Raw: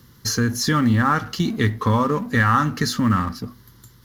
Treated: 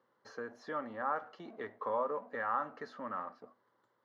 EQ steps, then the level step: ladder band-pass 700 Hz, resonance 55%; -1.5 dB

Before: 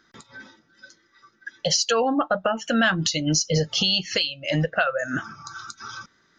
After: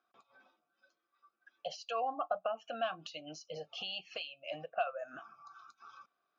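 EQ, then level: dynamic EQ 3000 Hz, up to +3 dB, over -36 dBFS, Q 0.95; vowel filter a; -4.5 dB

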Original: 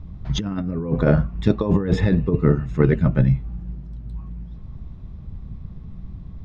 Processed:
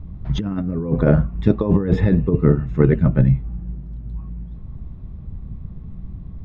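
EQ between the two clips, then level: tone controls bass -3 dB, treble -10 dB; low shelf 450 Hz +7 dB; -1.5 dB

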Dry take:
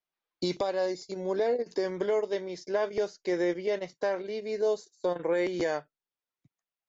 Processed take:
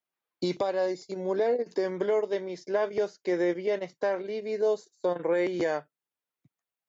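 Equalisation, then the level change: HPF 94 Hz; bell 5400 Hz -5 dB 1.4 oct; +1.5 dB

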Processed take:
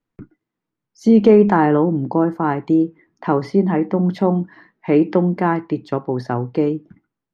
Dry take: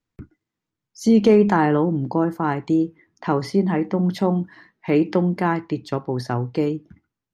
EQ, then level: LPF 1500 Hz 6 dB/oct; bell 71 Hz -13.5 dB 1.1 oct; +4.5 dB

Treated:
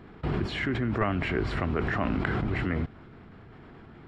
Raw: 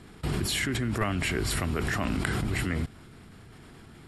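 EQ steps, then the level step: tape spacing loss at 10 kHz 42 dB; low shelf 320 Hz -8 dB; +7.5 dB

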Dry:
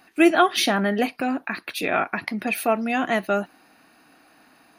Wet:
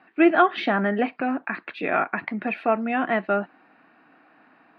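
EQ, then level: BPF 140–5200 Hz; air absorption 470 m; bell 1600 Hz +4 dB 1.7 oct; 0.0 dB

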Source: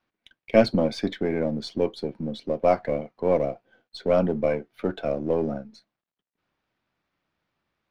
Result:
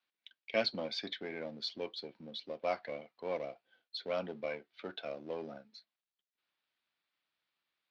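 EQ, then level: band-pass 4100 Hz, Q 1.8; air absorption 81 m; tilt -2 dB/oct; +6.0 dB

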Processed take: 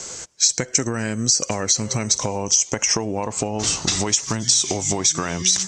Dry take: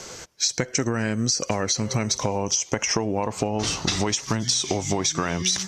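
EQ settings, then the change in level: synth low-pass 7700 Hz, resonance Q 4.1; 0.0 dB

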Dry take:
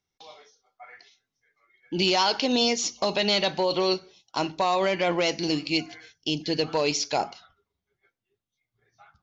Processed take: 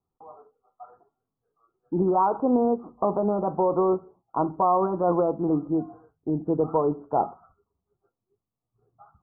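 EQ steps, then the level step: steep low-pass 1300 Hz 96 dB/oct; notch 580 Hz, Q 12; +3.5 dB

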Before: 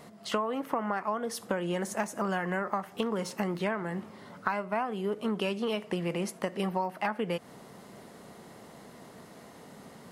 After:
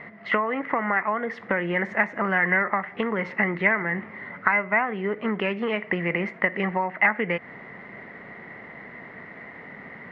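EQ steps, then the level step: synth low-pass 2000 Hz, resonance Q 10; air absorption 87 m; +4.0 dB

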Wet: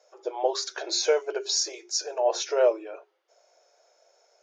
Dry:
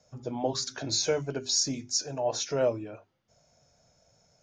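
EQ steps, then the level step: brick-wall FIR high-pass 330 Hz; LPF 3700 Hz 6 dB/oct; notches 60/120/180/240/300/360/420 Hz; +5.5 dB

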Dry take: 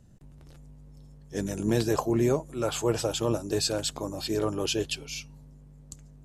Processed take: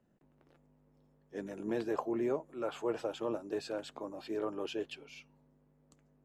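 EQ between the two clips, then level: three-band isolator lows -18 dB, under 210 Hz, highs -18 dB, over 2800 Hz; bell 77 Hz -3 dB 1.4 oct; -7.0 dB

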